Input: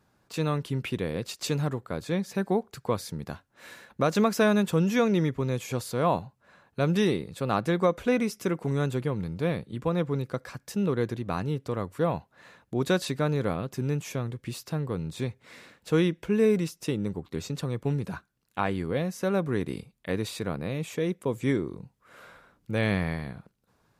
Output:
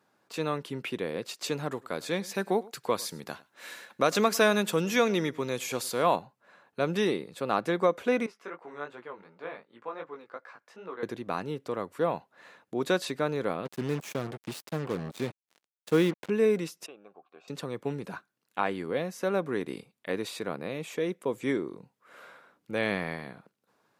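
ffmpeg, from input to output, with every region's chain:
ffmpeg -i in.wav -filter_complex "[0:a]asettb=1/sr,asplit=3[link_01][link_02][link_03];[link_01]atrim=end=1.714[link_04];[link_02]atrim=start=1.71:end=6.16,asetpts=PTS-STARTPTS,afade=type=in:duration=0.004:curve=qsin,afade=type=out:start_time=4.446:duration=0.004:curve=qsin,highshelf=frequency=2200:gain=8,aecho=1:1:102:0.0794,atrim=end_sample=196245[link_05];[link_03]atrim=start=6.156[link_06];[link_04][link_05]acrossfade=duration=0.004:curve1=hsin:curve2=qsin[link_07];[link_07][link_06]acrossfade=duration=0.004:curve1=qsin:curve2=hsin,asettb=1/sr,asplit=3[link_08][link_09][link_10];[link_08]atrim=end=8.264[link_11];[link_09]atrim=start=8.26:end=11.03,asetpts=PTS-STARTPTS,afade=type=in:duration=0.004:curve=qsin,afade=type=out:start_time=2.766:duration=0.004:curve=qsin,flanger=delay=16.5:depth=4.2:speed=2.7,bandpass=frequency=1200:width_type=q:width=1[link_12];[link_10]atrim=start=11.026[link_13];[link_11][link_12]acrossfade=duration=0.004:curve1=hsin:curve2=qsin[link_14];[link_14][link_13]acrossfade=duration=0.004:curve1=qsin:curve2=hsin,asettb=1/sr,asplit=3[link_15][link_16][link_17];[link_15]atrim=end=13.654[link_18];[link_16]atrim=start=13.65:end=16.3,asetpts=PTS-STARTPTS,afade=type=in:duration=0.004:curve=qsin,afade=type=out:start_time=2.646:duration=0.004:curve=qsin,acrusher=bits=5:mix=0:aa=0.5,lowshelf=frequency=270:gain=6[link_19];[link_17]atrim=start=16.296[link_20];[link_18][link_19]acrossfade=duration=0.004:curve1=hsin:curve2=qsin[link_21];[link_21][link_20]acrossfade=duration=0.004:curve1=qsin:curve2=hsin,asettb=1/sr,asplit=3[link_22][link_23][link_24];[link_22]atrim=end=16.864[link_25];[link_23]atrim=start=16.86:end=17.48,asetpts=PTS-STARTPTS,afade=type=in:duration=0.004:curve=qsin,afade=type=out:start_time=0.616:duration=0.004:curve=qsin,asplit=3[link_26][link_27][link_28];[link_26]bandpass=frequency=730:width_type=q:width=8,volume=0dB[link_29];[link_27]bandpass=frequency=1090:width_type=q:width=8,volume=-6dB[link_30];[link_28]bandpass=frequency=2440:width_type=q:width=8,volume=-9dB[link_31];[link_29][link_30][link_31]amix=inputs=3:normalize=0,equalizer=frequency=1600:width=4.4:gain=11.5[link_32];[link_24]atrim=start=17.476[link_33];[link_25][link_32]acrossfade=duration=0.004:curve1=hsin:curve2=qsin[link_34];[link_34][link_33]acrossfade=duration=0.004:curve1=qsin:curve2=hsin,highpass=180,bass=frequency=250:gain=-6,treble=frequency=4000:gain=-3" out.wav

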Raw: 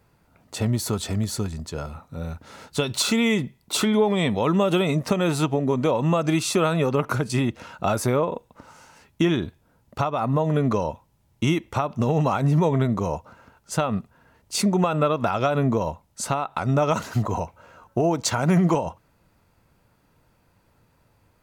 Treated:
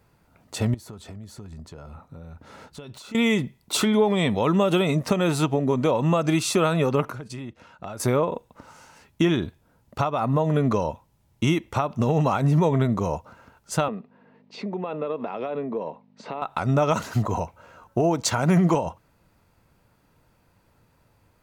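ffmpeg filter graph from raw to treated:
ffmpeg -i in.wav -filter_complex "[0:a]asettb=1/sr,asplit=3[link_01][link_02][link_03];[link_01]atrim=end=0.744[link_04];[link_02]atrim=start=0.74:end=3.15,asetpts=PTS-STARTPTS,afade=type=in:duration=0.004:curve=qsin,afade=type=out:start_time=2.406:duration=0.004:curve=qsin,acompressor=threshold=-37dB:ratio=5:attack=3.2:release=140:knee=1:detection=peak,aeval=exprs='(mod(21.1*val(0)+1,2)-1)/21.1':channel_layout=same,highshelf=frequency=2500:gain=-8[link_05];[link_03]atrim=start=3.146[link_06];[link_04][link_05]acrossfade=duration=0.004:curve1=hsin:curve2=qsin[link_07];[link_07][link_06]acrossfade=duration=0.004:curve1=qsin:curve2=hsin,asettb=1/sr,asplit=3[link_08][link_09][link_10];[link_08]atrim=end=7.104[link_11];[link_09]atrim=start=7.1:end=8,asetpts=PTS-STARTPTS,afade=type=in:duration=0.004:curve=qsin,afade=type=out:start_time=0.896:duration=0.004:curve=qsin,agate=range=-9dB:threshold=-34dB:ratio=16:release=100:detection=peak,highshelf=frequency=7000:gain=-7.5,acompressor=threshold=-36dB:ratio=3:attack=3.2:release=140:knee=1:detection=peak[link_12];[link_10]atrim=start=7.996[link_13];[link_11][link_12]acrossfade=duration=0.004:curve1=hsin:curve2=qsin[link_14];[link_14][link_13]acrossfade=duration=0.004:curve1=qsin:curve2=hsin,asettb=1/sr,asplit=3[link_15][link_16][link_17];[link_15]atrim=end=13.884[link_18];[link_16]atrim=start=13.88:end=16.42,asetpts=PTS-STARTPTS,afade=type=in:duration=0.004:curve=qsin,afade=type=out:start_time=2.536:duration=0.004:curve=qsin,acompressor=threshold=-27dB:ratio=4:attack=3.2:release=140:knee=1:detection=peak,aeval=exprs='val(0)+0.00501*(sin(2*PI*50*n/s)+sin(2*PI*2*50*n/s)/2+sin(2*PI*3*50*n/s)/3+sin(2*PI*4*50*n/s)/4+sin(2*PI*5*50*n/s)/5)':channel_layout=same,highpass=frequency=190:width=0.5412,highpass=frequency=190:width=1.3066,equalizer=frequency=450:width_type=q:width=4:gain=7,equalizer=frequency=1400:width_type=q:width=4:gain=-7,equalizer=frequency=3200:width_type=q:width=4:gain=-5,lowpass=frequency=3600:width=0.5412,lowpass=frequency=3600:width=1.3066[link_19];[link_17]atrim=start=16.416[link_20];[link_18][link_19]acrossfade=duration=0.004:curve1=hsin:curve2=qsin[link_21];[link_21][link_20]acrossfade=duration=0.004:curve1=qsin:curve2=hsin" out.wav

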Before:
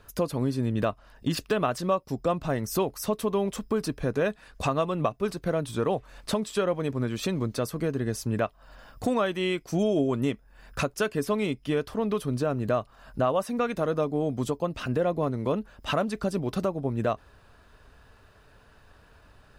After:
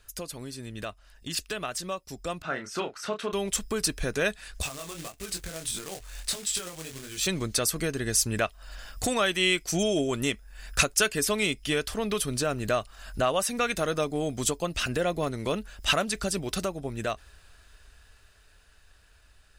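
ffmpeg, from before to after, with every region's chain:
ffmpeg -i in.wav -filter_complex "[0:a]asettb=1/sr,asplit=3[link_01][link_02][link_03];[link_01]atrim=end=2.424[link_04];[link_02]atrim=start=2.42:end=3.33,asetpts=PTS-STARTPTS,afade=type=in:duration=0.004:curve=qsin,afade=type=out:start_time=0.906:duration=0.004:curve=qsin,highpass=180,lowpass=3000,equalizer=frequency=1400:width_type=o:width=0.34:gain=12,asplit=2[link_05][link_06];[link_06]adelay=30,volume=-7dB[link_07];[link_05][link_07]amix=inputs=2:normalize=0,atrim=end_sample=40131[link_08];[link_03]atrim=start=3.326[link_09];[link_04][link_08]acrossfade=duration=0.004:curve1=hsin:curve2=qsin[link_10];[link_10][link_09]acrossfade=duration=0.004:curve1=qsin:curve2=hsin,asettb=1/sr,asplit=3[link_11][link_12][link_13];[link_11]atrim=end=4.624[link_14];[link_12]atrim=start=4.62:end=7.27,asetpts=PTS-STARTPTS,afade=type=in:duration=0.004:curve=qsin,afade=type=out:start_time=2.646:duration=0.004:curve=qsin,acompressor=threshold=-32dB:ratio=8:attack=3.2:release=140:knee=1:detection=peak,flanger=delay=20:depth=4.7:speed=1.6,acrusher=bits=3:mode=log:mix=0:aa=0.000001[link_15];[link_13]atrim=start=7.266[link_16];[link_14][link_15]acrossfade=duration=0.004:curve1=hsin:curve2=qsin[link_17];[link_17][link_16]acrossfade=duration=0.004:curve1=qsin:curve2=hsin,equalizer=frequency=125:width_type=o:width=1:gain=-12,equalizer=frequency=250:width_type=o:width=1:gain=-10,equalizer=frequency=500:width_type=o:width=1:gain=-8,equalizer=frequency=1000:width_type=o:width=1:gain=-10,equalizer=frequency=8000:width_type=o:width=1:gain=7,dynaudnorm=framelen=470:gausssize=13:maxgain=10dB" out.wav

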